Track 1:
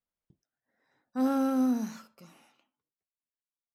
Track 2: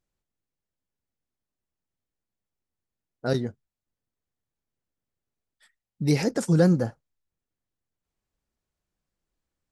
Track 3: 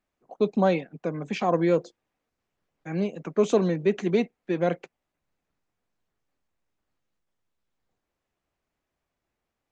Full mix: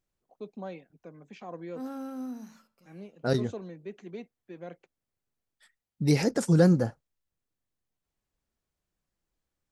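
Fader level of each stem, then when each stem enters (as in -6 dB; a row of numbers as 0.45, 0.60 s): -11.0, -1.0, -18.0 dB; 0.60, 0.00, 0.00 s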